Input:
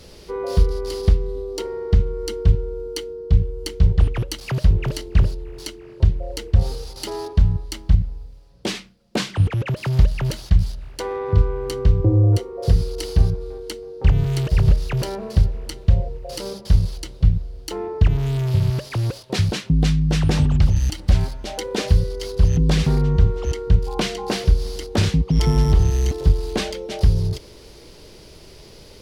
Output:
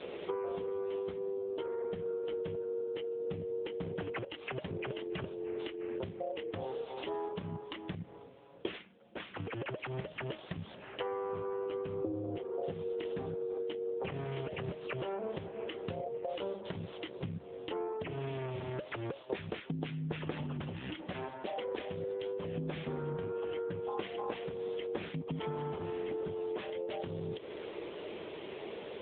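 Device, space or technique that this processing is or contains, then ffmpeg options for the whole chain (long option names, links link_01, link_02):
voicemail: -af "highpass=320,lowpass=3300,acompressor=threshold=-42dB:ratio=10,volume=8.5dB" -ar 8000 -c:a libopencore_amrnb -b:a 6700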